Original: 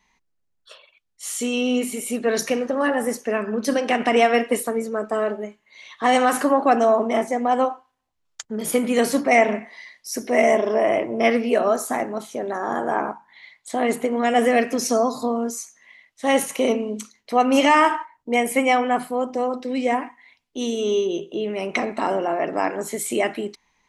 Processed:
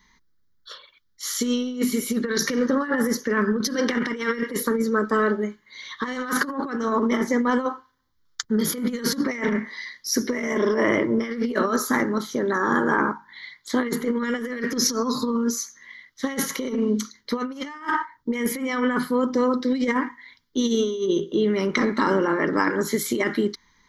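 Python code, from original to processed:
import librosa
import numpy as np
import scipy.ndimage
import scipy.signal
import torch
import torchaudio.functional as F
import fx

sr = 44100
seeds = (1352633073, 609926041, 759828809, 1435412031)

y = fx.fixed_phaser(x, sr, hz=2600.0, stages=6)
y = fx.over_compress(y, sr, threshold_db=-28.0, ratio=-0.5)
y = y * librosa.db_to_amplitude(6.0)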